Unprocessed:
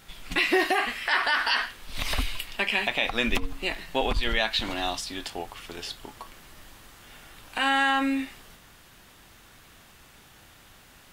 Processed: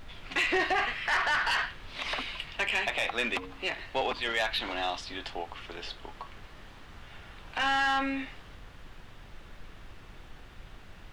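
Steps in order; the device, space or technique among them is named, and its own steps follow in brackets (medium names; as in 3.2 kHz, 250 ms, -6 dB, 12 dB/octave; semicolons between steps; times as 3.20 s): aircraft cabin announcement (band-pass 380–3500 Hz; saturation -20.5 dBFS, distortion -13 dB; brown noise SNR 13 dB)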